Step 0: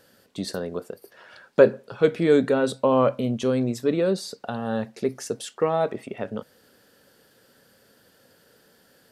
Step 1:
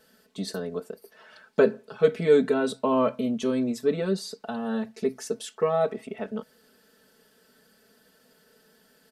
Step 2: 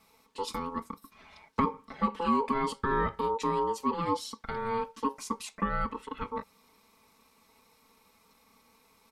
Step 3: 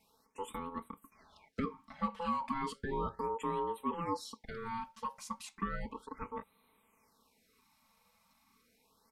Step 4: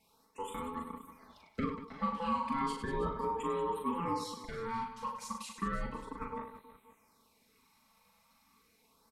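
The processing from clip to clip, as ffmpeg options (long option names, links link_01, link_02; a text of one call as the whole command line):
ffmpeg -i in.wav -af "aecho=1:1:4.6:0.99,volume=-5.5dB" out.wav
ffmpeg -i in.wav -filter_complex "[0:a]acrossover=split=290[link_01][link_02];[link_02]acompressor=threshold=-25dB:ratio=4[link_03];[link_01][link_03]amix=inputs=2:normalize=0,aeval=exprs='val(0)*sin(2*PI*680*n/s)':channel_layout=same" out.wav
ffmpeg -i in.wav -af "afftfilt=real='re*(1-between(b*sr/1024,310*pow(6100/310,0.5+0.5*sin(2*PI*0.34*pts/sr))/1.41,310*pow(6100/310,0.5+0.5*sin(2*PI*0.34*pts/sr))*1.41))':imag='im*(1-between(b*sr/1024,310*pow(6100/310,0.5+0.5*sin(2*PI*0.34*pts/sr))/1.41,310*pow(6100/310,0.5+0.5*sin(2*PI*0.34*pts/sr))*1.41))':win_size=1024:overlap=0.75,volume=-6.5dB" out.wav
ffmpeg -i in.wav -af "aecho=1:1:40|100|190|325|527.5:0.631|0.398|0.251|0.158|0.1" out.wav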